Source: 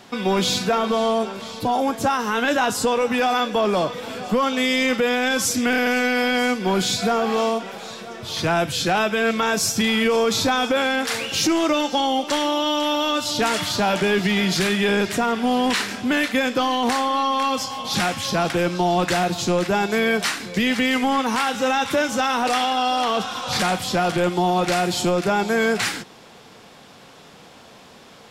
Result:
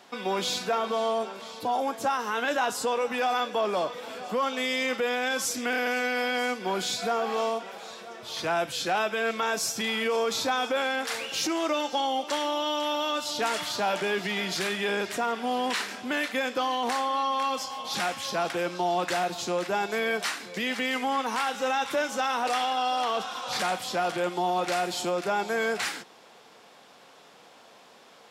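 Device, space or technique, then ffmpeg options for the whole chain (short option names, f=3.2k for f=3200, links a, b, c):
filter by subtraction: -filter_complex "[0:a]asplit=2[a][b];[b]lowpass=640,volume=-1[c];[a][c]amix=inputs=2:normalize=0,volume=-7.5dB"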